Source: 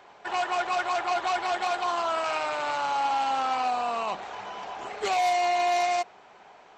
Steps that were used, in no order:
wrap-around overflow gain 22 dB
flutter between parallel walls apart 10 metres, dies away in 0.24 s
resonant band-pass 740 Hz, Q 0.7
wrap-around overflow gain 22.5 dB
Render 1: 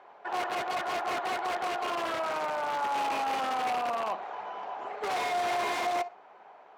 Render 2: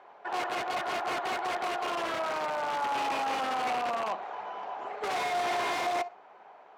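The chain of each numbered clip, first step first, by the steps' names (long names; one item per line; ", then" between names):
flutter between parallel walls, then first wrap-around overflow, then second wrap-around overflow, then resonant band-pass
flutter between parallel walls, then second wrap-around overflow, then first wrap-around overflow, then resonant band-pass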